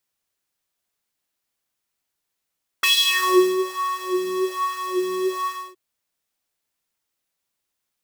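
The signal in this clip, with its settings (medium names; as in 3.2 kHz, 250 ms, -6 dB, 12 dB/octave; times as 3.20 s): synth patch with filter wobble F#4, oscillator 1 square, oscillator 2 square, interval +19 st, oscillator 2 level -6.5 dB, sub -21.5 dB, noise -11.5 dB, filter highpass, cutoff 380 Hz, Q 3.9, filter envelope 2.5 oct, filter decay 0.70 s, filter sustain 20%, attack 9.5 ms, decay 0.73 s, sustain -16 dB, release 0.28 s, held 2.64 s, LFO 1.2 Hz, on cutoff 1.2 oct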